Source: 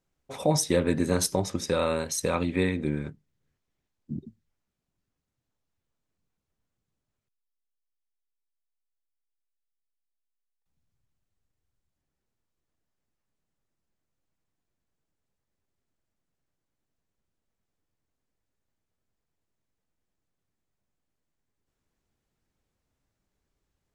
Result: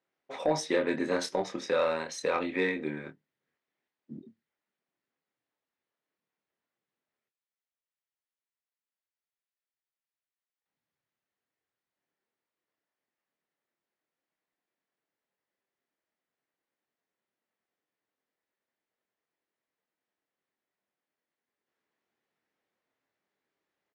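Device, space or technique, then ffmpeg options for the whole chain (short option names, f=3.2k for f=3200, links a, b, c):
intercom: -filter_complex "[0:a]highpass=340,lowpass=3.8k,equalizer=f=1.9k:t=o:w=0.37:g=5,asoftclip=type=tanh:threshold=-15dB,asplit=2[a][b];[b]adelay=26,volume=-7dB[c];[a][c]amix=inputs=2:normalize=0,volume=-1dB"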